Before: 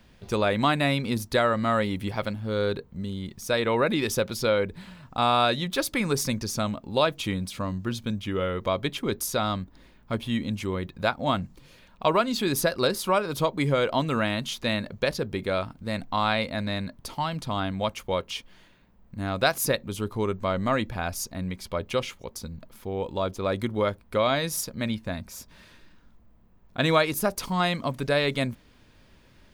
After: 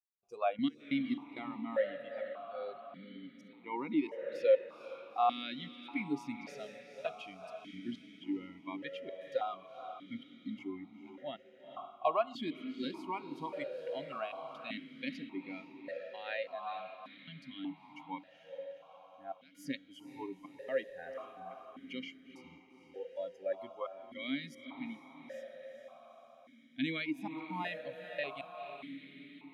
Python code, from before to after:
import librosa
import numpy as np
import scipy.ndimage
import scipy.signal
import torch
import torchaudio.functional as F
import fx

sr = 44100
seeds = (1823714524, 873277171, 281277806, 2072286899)

y = fx.noise_reduce_blind(x, sr, reduce_db=22)
y = fx.comb_fb(y, sr, f0_hz=480.0, decay_s=0.67, harmonics='all', damping=0.0, mix_pct=40)
y = fx.step_gate(y, sr, bpm=66, pattern='.xx.x.xxxx.xxxx', floor_db=-24.0, edge_ms=4.5)
y = fx.echo_diffused(y, sr, ms=459, feedback_pct=58, wet_db=-9.0)
y = fx.vowel_held(y, sr, hz=1.7)
y = y * librosa.db_to_amplitude(4.5)